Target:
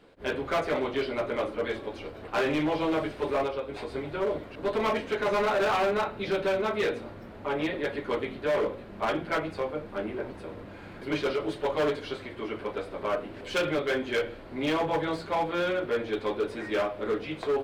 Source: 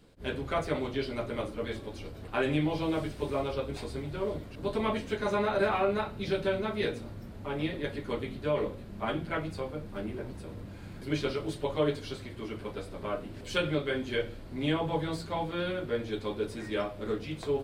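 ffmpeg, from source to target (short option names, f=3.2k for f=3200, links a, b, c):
-filter_complex "[0:a]bass=f=250:g=-13,treble=f=4k:g=-14,asettb=1/sr,asplit=3[a][b][c];[a]atrim=end=3.474[d];[b]atrim=start=3.47:end=3.92,asetpts=PTS-STARTPTS,afade=t=in:d=0.004:c=qsin,afade=t=out:st=0.446:d=0.004:c=qsin,acompressor=threshold=-41dB:ratio=2[e];[c]atrim=start=3.916[f];[d][e]acrossfade=d=0.004:c1=hsin:c2=qsin[g];[g][f]acrossfade=d=0.004:c1=qsin:c2=hsin,asoftclip=type=hard:threshold=-30dB,volume=7.5dB"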